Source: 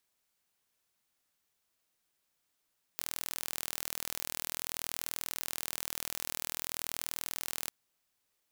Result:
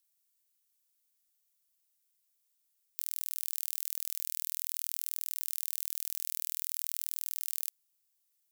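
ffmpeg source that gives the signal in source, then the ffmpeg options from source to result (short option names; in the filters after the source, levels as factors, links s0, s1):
-f lavfi -i "aevalsrc='0.355*eq(mod(n,1089),0)':d=4.7:s=44100"
-af "aderivative,acrusher=bits=5:mode=log:mix=0:aa=0.000001"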